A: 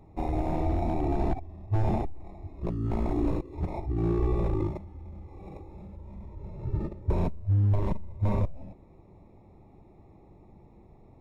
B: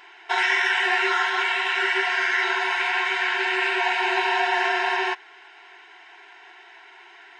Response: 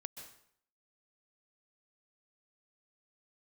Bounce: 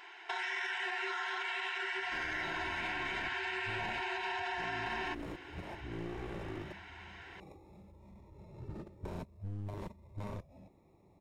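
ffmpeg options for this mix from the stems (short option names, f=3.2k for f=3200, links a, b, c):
-filter_complex "[0:a]highpass=f=120:p=1,highshelf=f=3.1k:g=11,aeval=exprs='clip(val(0),-1,0.0211)':c=same,adelay=1950,volume=-9dB[a];[1:a]alimiter=limit=-19dB:level=0:latency=1:release=62,volume=-4.5dB[b];[a][b]amix=inputs=2:normalize=0,acompressor=threshold=-37dB:ratio=2.5"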